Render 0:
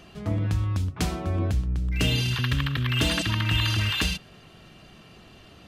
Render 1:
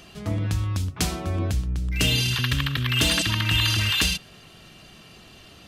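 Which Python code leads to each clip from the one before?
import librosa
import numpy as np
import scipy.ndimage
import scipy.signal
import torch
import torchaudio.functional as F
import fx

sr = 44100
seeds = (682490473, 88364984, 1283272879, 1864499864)

y = fx.high_shelf(x, sr, hz=3000.0, db=9.0)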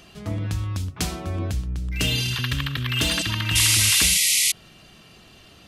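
y = fx.spec_paint(x, sr, seeds[0], shape='noise', start_s=3.55, length_s=0.97, low_hz=1900.0, high_hz=12000.0, level_db=-18.0)
y = F.gain(torch.from_numpy(y), -1.5).numpy()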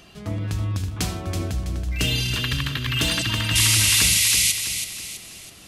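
y = fx.echo_feedback(x, sr, ms=327, feedback_pct=42, wet_db=-8.0)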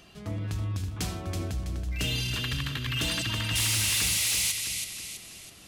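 y = 10.0 ** (-16.5 / 20.0) * np.tanh(x / 10.0 ** (-16.5 / 20.0))
y = F.gain(torch.from_numpy(y), -5.0).numpy()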